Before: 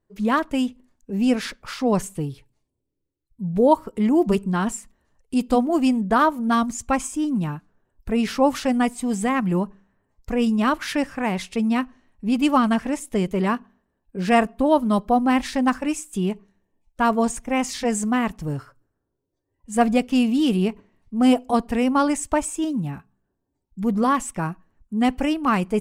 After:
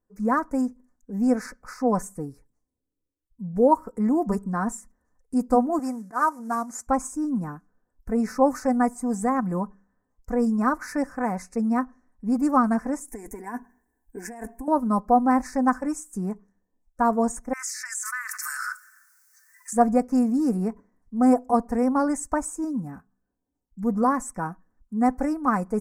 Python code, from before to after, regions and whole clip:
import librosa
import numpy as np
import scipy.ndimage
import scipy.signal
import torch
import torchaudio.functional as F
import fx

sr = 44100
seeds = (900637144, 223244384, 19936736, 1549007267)

y = fx.chain(x, sr, fx.cvsd(bps=64000),
    fx.highpass(hz=640.0, slope=6),
    fx.auto_swell(attack_ms=116.0), at=(5.79, 6.87))
y = fx.chain(y, sr, fx.high_shelf(hz=3000.0, db=10.5),
    fx.over_compress(threshold_db=-26.0, ratio=-1.0),
    fx.fixed_phaser(hz=840.0, stages=8), at=(13.08, 14.68))
y = fx.chain(y, sr, fx.steep_highpass(hz=1400.0, slope=48),
    fx.env_flatten(amount_pct=100), at=(17.53, 19.73))
y = scipy.signal.sosfilt(scipy.signal.cheby1(2, 1.0, [1600.0, 6100.0], 'bandstop', fs=sr, output='sos'), y)
y = fx.dynamic_eq(y, sr, hz=800.0, q=0.87, threshold_db=-34.0, ratio=4.0, max_db=4)
y = y + 0.48 * np.pad(y, (int(4.0 * sr / 1000.0), 0))[:len(y)]
y = y * 10.0 ** (-5.0 / 20.0)